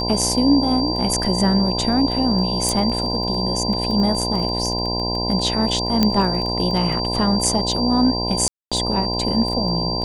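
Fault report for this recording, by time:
buzz 60 Hz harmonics 17 -25 dBFS
crackle 11/s -24 dBFS
tone 4700 Hz -24 dBFS
2.69 pop
6.03 pop -3 dBFS
8.48–8.72 gap 0.236 s

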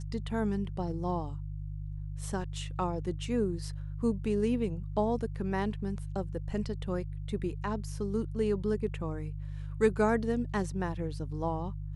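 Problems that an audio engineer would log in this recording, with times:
hum 50 Hz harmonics 3 -38 dBFS

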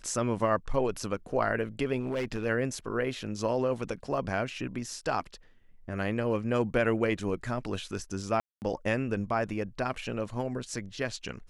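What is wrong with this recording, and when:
1.99–2.46 clipped -27 dBFS
8.4–8.62 gap 0.219 s

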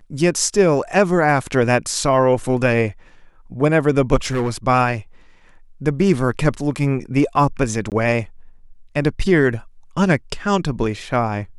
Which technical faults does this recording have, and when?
4.25–4.51 clipped -16 dBFS
7.9–7.92 gap 18 ms

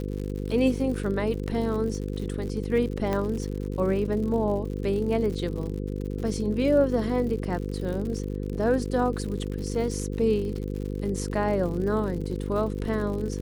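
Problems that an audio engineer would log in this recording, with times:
buzz 50 Hz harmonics 10 -31 dBFS
crackle 100/s -34 dBFS
3.13 pop -15 dBFS

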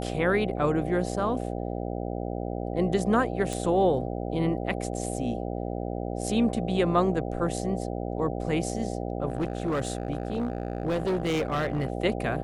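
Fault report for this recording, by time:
buzz 60 Hz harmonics 13 -32 dBFS
3.53 pop
9.28–11.9 clipped -23 dBFS

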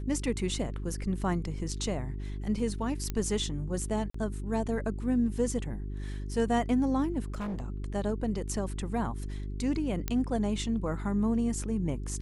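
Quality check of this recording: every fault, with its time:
hum 50 Hz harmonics 8 -36 dBFS
3.1 pop -18 dBFS
4.1–4.14 gap 44 ms
7.28–7.68 clipped -31.5 dBFS
10.08 pop -15 dBFS

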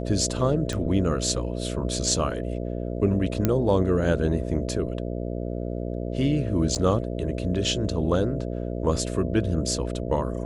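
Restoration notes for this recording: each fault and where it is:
buzz 60 Hz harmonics 11 -30 dBFS
0.73 pop -17 dBFS
3.45 pop -8 dBFS
6.75–6.76 gap 7.7 ms

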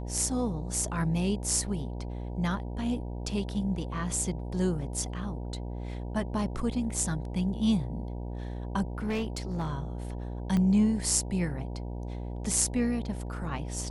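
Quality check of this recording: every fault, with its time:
buzz 60 Hz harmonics 16 -36 dBFS
8.98–9.73 clipped -26.5 dBFS
10.57 pop -18 dBFS

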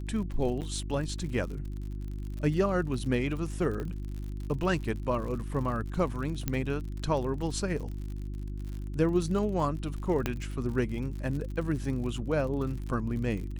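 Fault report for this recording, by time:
crackle 58/s -37 dBFS
hum 50 Hz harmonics 7 -36 dBFS
0.61–0.62 gap 8.1 ms
3.8 pop -25 dBFS
6.48 pop -14 dBFS
10.26 pop -14 dBFS

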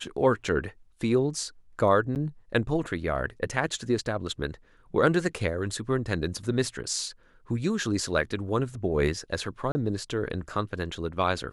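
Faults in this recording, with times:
2.15–2.16 gap 8.5 ms
9.72–9.75 gap 30 ms

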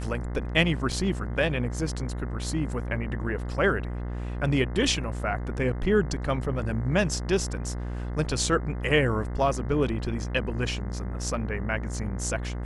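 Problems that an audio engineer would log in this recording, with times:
buzz 60 Hz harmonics 35 -32 dBFS
0.92 gap 4.7 ms

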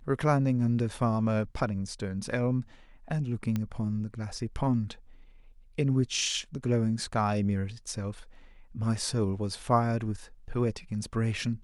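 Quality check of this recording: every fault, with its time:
3.56 pop -18 dBFS

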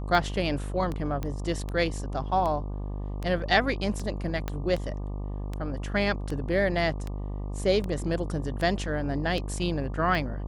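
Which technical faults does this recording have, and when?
buzz 50 Hz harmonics 24 -33 dBFS
tick 78 rpm
1.23 pop -19 dBFS
4.48 pop -16 dBFS

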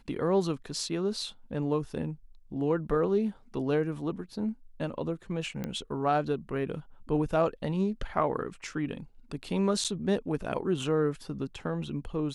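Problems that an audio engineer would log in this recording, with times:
5.64 pop -21 dBFS
9.84–9.85 gap 7.4 ms

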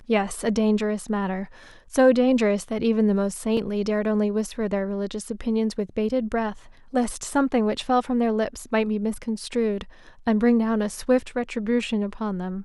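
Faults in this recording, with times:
3.57 gap 2.6 ms

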